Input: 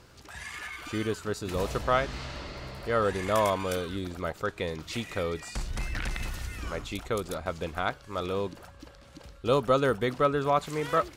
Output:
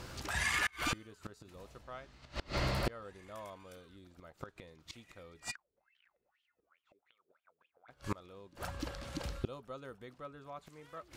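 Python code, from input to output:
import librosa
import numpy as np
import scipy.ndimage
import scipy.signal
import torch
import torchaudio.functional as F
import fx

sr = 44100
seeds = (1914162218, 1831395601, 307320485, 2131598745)

y = fx.notch(x, sr, hz=430.0, q=13.0)
y = fx.gate_flip(y, sr, shuts_db=-28.0, range_db=-30)
y = fx.wah_lfo(y, sr, hz=fx.line((5.5, 1.7), (7.88, 4.4)), low_hz=410.0, high_hz=3200.0, q=13.0, at=(5.5, 7.88), fade=0.02)
y = y * librosa.db_to_amplitude(7.5)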